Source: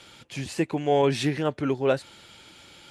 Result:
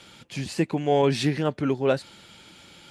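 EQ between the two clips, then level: dynamic EQ 4600 Hz, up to +4 dB, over -52 dBFS, Q 3.6; bell 190 Hz +6 dB 0.66 oct; 0.0 dB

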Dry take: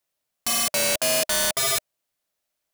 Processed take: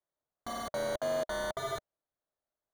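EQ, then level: running mean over 17 samples; bell 190 Hz -4.5 dB 0.89 oct; -4.0 dB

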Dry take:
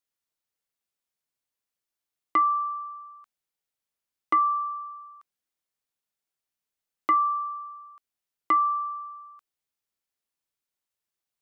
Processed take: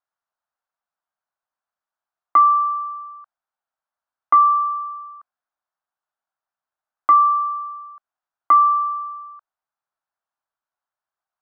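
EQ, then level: air absorption 85 m; band shelf 1000 Hz +16 dB; -6.5 dB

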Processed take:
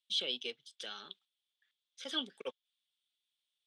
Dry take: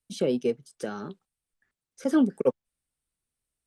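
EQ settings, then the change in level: band-pass 3400 Hz, Q 8; +16.0 dB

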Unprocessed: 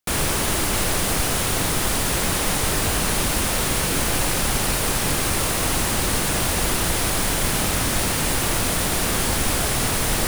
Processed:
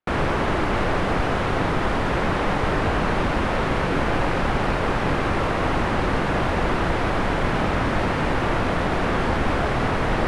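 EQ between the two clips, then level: LPF 1700 Hz 12 dB/oct; low shelf 200 Hz -4.5 dB; +4.5 dB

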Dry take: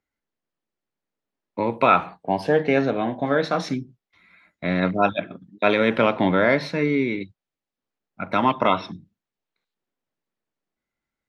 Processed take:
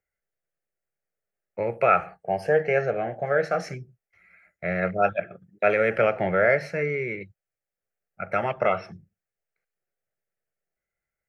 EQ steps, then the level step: fixed phaser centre 1000 Hz, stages 6; 0.0 dB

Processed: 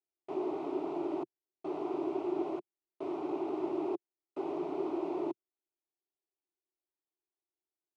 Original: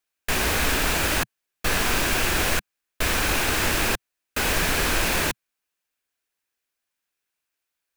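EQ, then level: ladder band-pass 410 Hz, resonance 60%; fixed phaser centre 330 Hz, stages 8; +5.5 dB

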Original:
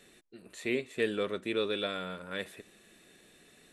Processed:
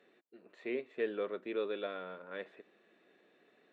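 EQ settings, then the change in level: HPF 370 Hz 12 dB/oct; tape spacing loss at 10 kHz 41 dB; 0.0 dB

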